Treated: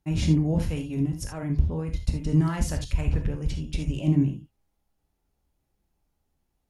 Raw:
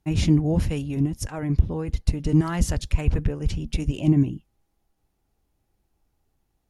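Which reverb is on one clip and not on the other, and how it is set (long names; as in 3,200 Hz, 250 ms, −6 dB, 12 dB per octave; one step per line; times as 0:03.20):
reverb whose tail is shaped and stops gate 100 ms flat, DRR 4.5 dB
level −4.5 dB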